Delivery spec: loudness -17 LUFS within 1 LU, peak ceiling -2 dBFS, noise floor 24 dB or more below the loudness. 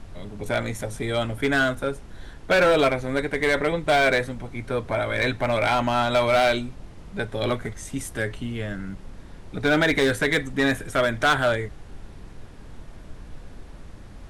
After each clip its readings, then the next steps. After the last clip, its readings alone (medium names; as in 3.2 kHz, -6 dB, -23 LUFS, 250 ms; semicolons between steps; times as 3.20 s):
clipped samples 1.3%; clipping level -14.0 dBFS; noise floor -43 dBFS; noise floor target -48 dBFS; loudness -23.5 LUFS; peak level -14.0 dBFS; loudness target -17.0 LUFS
-> clip repair -14 dBFS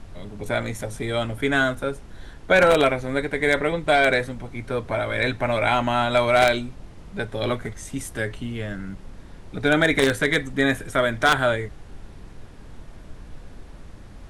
clipped samples 0.0%; noise floor -43 dBFS; noise floor target -46 dBFS
-> noise print and reduce 6 dB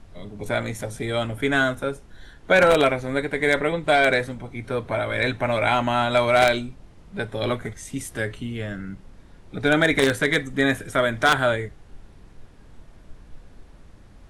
noise floor -49 dBFS; loudness -22.0 LUFS; peak level -5.0 dBFS; loudness target -17.0 LUFS
-> trim +5 dB; peak limiter -2 dBFS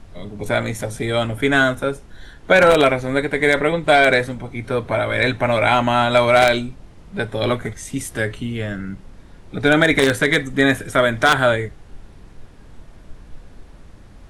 loudness -17.5 LUFS; peak level -2.0 dBFS; noise floor -44 dBFS